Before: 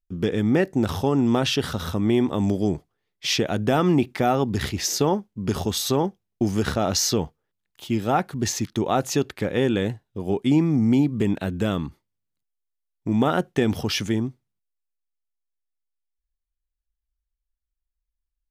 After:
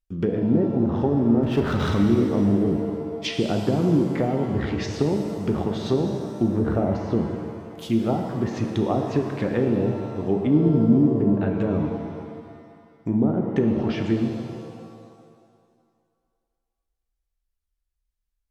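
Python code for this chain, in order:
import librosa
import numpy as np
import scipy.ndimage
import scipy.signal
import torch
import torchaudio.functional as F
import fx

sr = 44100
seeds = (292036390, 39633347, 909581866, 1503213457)

y = fx.env_lowpass_down(x, sr, base_hz=420.0, full_db=-17.0)
y = fx.power_curve(y, sr, exponent=0.7, at=(1.43, 2.03))
y = fx.rev_shimmer(y, sr, seeds[0], rt60_s=2.0, semitones=7, shimmer_db=-8, drr_db=3.5)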